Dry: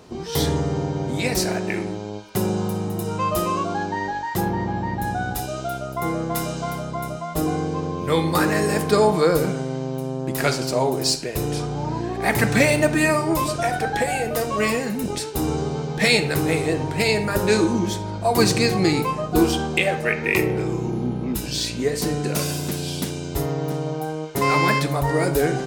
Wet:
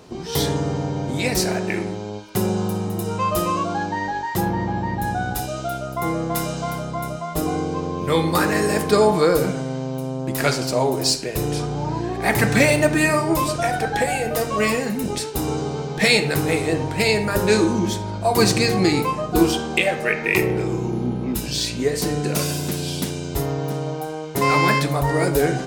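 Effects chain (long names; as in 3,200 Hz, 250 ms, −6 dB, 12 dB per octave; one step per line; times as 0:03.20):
hum removal 78.35 Hz, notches 27
level +1.5 dB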